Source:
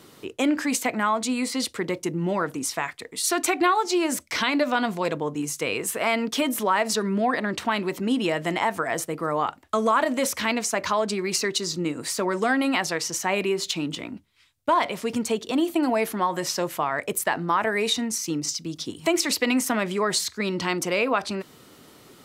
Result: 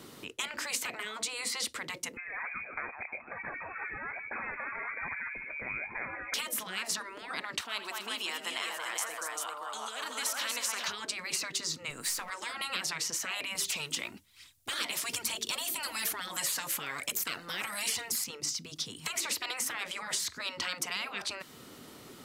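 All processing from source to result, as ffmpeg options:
-filter_complex "[0:a]asettb=1/sr,asplit=3[a][b][c];[a]atrim=end=2.174[d];[b]atrim=start=2.17:end=6.34,asetpts=PTS-STARTPTS,afade=t=in:d=0.004:c=qsin,afade=t=out:st=4.166:d=0.004:c=qsin,aphaser=in_gain=1:out_gain=1:delay=1.3:decay=0.75:speed=1.2:type=triangular,aecho=1:1:149|298|447:0.106|0.0455|0.0196,atrim=end_sample=183897,lowpass=f=2.2k:t=q:w=0.5098,lowpass=f=2.2k:t=q:w=0.6013,lowpass=f=2.2k:t=q:w=0.9,lowpass=f=2.2k:t=q:w=2.563,afreqshift=-2600[e];[c]atrim=start=6.336[f];[d][e]acrossfade=d=0.004:c1=hsin:c2=qsin[g];[g][f]acrossfade=d=0.004:c1=qsin:c2=hsin,asettb=1/sr,asplit=3[h][i][j];[h]atrim=end=7.614[k];[i]atrim=start=7.61:end=10.88,asetpts=PTS-STARTPTS,afade=t=in:d=0.004:c=qsin,afade=t=out:st=3.266:d=0.004:c=qsin,highpass=860,equalizer=f=2k:t=o:w=0.68:g=-7.5,aecho=1:1:80|85|236|393:0.133|0.133|0.376|0.562,atrim=end_sample=144207[l];[j]atrim=start=10.876[m];[k][l]acrossfade=d=0.004:c1=hsin:c2=qsin[n];[n][m]acrossfade=d=0.004:c1=qsin:c2=hsin,asettb=1/sr,asplit=3[o][p][q];[o]atrim=end=11.904[r];[p]atrim=start=11.9:end=12.3,asetpts=PTS-STARTPTS,afade=t=in:d=0.004:c=qsin,afade=t=out:st=0.396:d=0.004:c=qsin,aeval=exprs='if(lt(val(0),0),0.708*val(0),val(0))':c=same,highshelf=f=8.7k:g=10[s];[q]atrim=start=12.296[t];[r][s]acrossfade=d=0.004:c1=hsin:c2=qsin[u];[u][t]acrossfade=d=0.004:c1=qsin:c2=hsin,asettb=1/sr,asplit=3[v][w][x];[v]atrim=end=13.554[y];[w]atrim=start=13.55:end=18.24,asetpts=PTS-STARTPTS,afade=t=in:d=0.004:c=qsin,afade=t=out:st=4.686:d=0.004:c=qsin,highshelf=f=3.9k:g=12,aphaser=in_gain=1:out_gain=1:delay=3.8:decay=0.4:speed=1.1:type=triangular[z];[x]atrim=start=18.236[aa];[y][z]acrossfade=d=0.004:c1=hsin:c2=qsin[ab];[ab][aa]acrossfade=d=0.004:c1=qsin:c2=hsin,afftfilt=real='re*lt(hypot(re,im),0.141)':imag='im*lt(hypot(re,im),0.141)':win_size=1024:overlap=0.75,equalizer=f=240:t=o:w=0.24:g=3.5,acrossover=split=1000|2300[ac][ad][ae];[ac]acompressor=threshold=-47dB:ratio=4[af];[ad]acompressor=threshold=-38dB:ratio=4[ag];[ae]acompressor=threshold=-31dB:ratio=4[ah];[af][ag][ah]amix=inputs=3:normalize=0"

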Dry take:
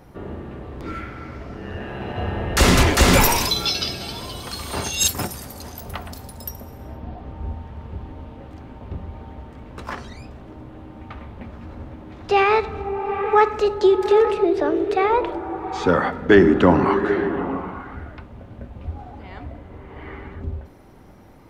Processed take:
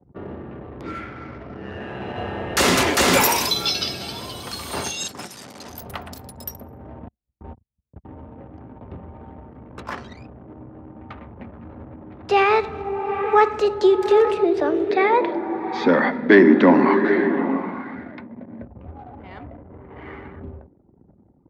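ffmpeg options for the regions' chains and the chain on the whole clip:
-filter_complex "[0:a]asettb=1/sr,asplit=3[a][b][c];[a]atrim=end=4.924[d];[b]atrim=start=4.92:end=5.69,asetpts=PTS-STARTPTS,afade=t=in:d=0.004:c=qsin,afade=t=out:st=0.766:d=0.004:c=qsin,acrusher=bits=7:dc=4:mix=0:aa=0.000001,highpass=160,lowpass=7.1k,acrossover=split=1600|4900[e][f][g];[e]acompressor=threshold=-36dB:ratio=4[h];[f]acompressor=threshold=-35dB:ratio=4[i];[g]acompressor=threshold=-32dB:ratio=4[j];[h][i][j]amix=inputs=3:normalize=0[k];[c]atrim=start=5.686[l];[d][k]acrossfade=d=0.004:c1=hsin:c2=qsin[m];[m][l]acrossfade=d=0.004:c1=qsin:c2=hsin,asettb=1/sr,asplit=3[n][o][p];[n]atrim=end=7.084[q];[o]atrim=start=7.08:end=8.05,asetpts=PTS-STARTPTS,afade=t=in:d=0.004:c=qsin,afade=t=out:st=0.966:d=0.004:c=qsin,agate=range=-33dB:threshold=-30dB:ratio=16:release=100:detection=peak,equalizer=f=130:t=o:w=1.6:g=-3[r];[p]atrim=start=8.046[s];[q][r]acrossfade=d=0.004:c1=hsin:c2=qsin[t];[t][s]acrossfade=d=0.004:c1=qsin:c2=hsin,asettb=1/sr,asplit=3[u][v][w];[u]atrim=end=14.904[x];[v]atrim=start=14.9:end=18.62,asetpts=PTS-STARTPTS,afade=t=in:d=0.004:c=qsin,afade=t=out:st=3.716:d=0.004:c=qsin,acontrast=30,highpass=220,equalizer=f=230:t=q:w=4:g=9,equalizer=f=440:t=q:w=4:g=-5,equalizer=f=760:t=q:w=4:g=-5,equalizer=f=1.3k:t=q:w=4:g=-10,equalizer=f=2k:t=q:w=4:g=5,equalizer=f=2.9k:t=q:w=4:g=-10,lowpass=f=4.6k:w=0.5412,lowpass=f=4.6k:w=1.3066[y];[w]atrim=start=18.616[z];[x][y]acrossfade=d=0.004:c1=hsin:c2=qsin[aa];[aa][z]acrossfade=d=0.004:c1=qsin:c2=hsin,anlmdn=0.251,acrossover=split=220|3000[ab][ac][ad];[ab]acompressor=threshold=-35dB:ratio=2[ae];[ae][ac][ad]amix=inputs=3:normalize=0,highpass=88"

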